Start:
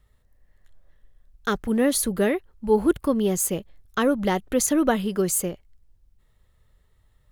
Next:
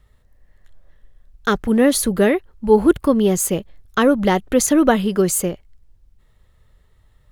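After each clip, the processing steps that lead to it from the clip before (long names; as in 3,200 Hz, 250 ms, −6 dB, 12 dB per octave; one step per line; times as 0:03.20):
high-shelf EQ 7,600 Hz −5 dB
level +6.5 dB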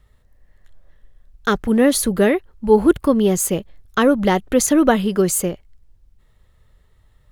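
no processing that can be heard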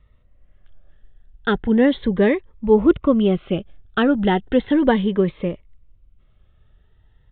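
downsampling to 8,000 Hz
phaser whose notches keep moving one way rising 0.35 Hz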